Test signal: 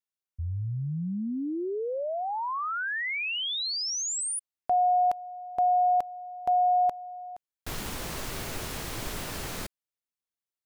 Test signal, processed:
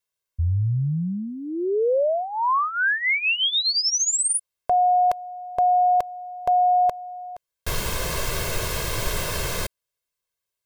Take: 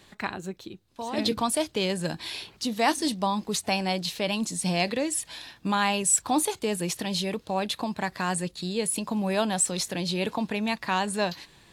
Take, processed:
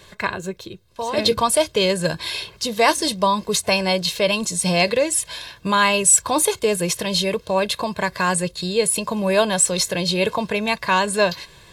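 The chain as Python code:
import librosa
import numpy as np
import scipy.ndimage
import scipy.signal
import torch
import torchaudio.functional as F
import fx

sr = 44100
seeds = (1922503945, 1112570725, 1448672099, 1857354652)

y = x + 0.66 * np.pad(x, (int(1.9 * sr / 1000.0), 0))[:len(x)]
y = y * 10.0 ** (7.0 / 20.0)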